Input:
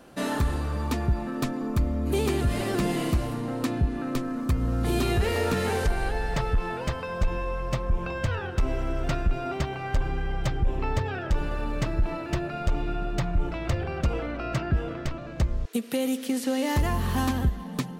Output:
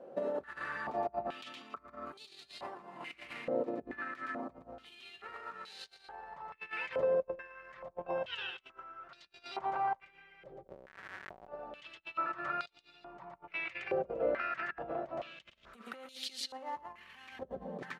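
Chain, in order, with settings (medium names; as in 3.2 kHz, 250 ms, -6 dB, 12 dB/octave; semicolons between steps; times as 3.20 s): on a send: delay 116 ms -7.5 dB; 10.67–11.48 s: on the sum: Schmitt trigger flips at -25 dBFS; comb 5.3 ms, depth 33%; compressor with a negative ratio -30 dBFS, ratio -0.5; step-sequenced band-pass 2.3 Hz 530–4100 Hz; trim +2.5 dB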